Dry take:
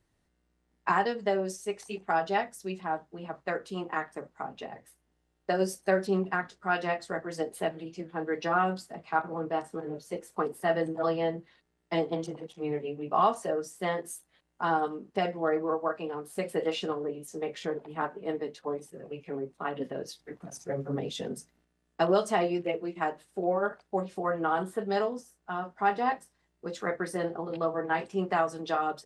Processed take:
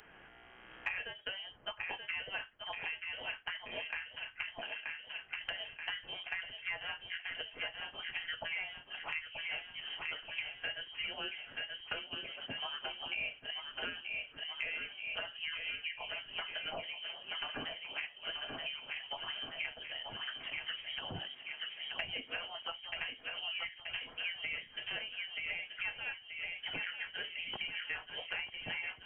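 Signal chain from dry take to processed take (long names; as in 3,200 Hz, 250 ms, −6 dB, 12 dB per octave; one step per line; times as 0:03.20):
camcorder AGC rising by 11 dB per second
high-pass filter 290 Hz 12 dB per octave
first difference
feedback echo with a low-pass in the loop 930 ms, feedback 58%, low-pass 2,700 Hz, level −6.5 dB
voice inversion scrambler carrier 3,500 Hz
multiband upward and downward compressor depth 100%
level +5.5 dB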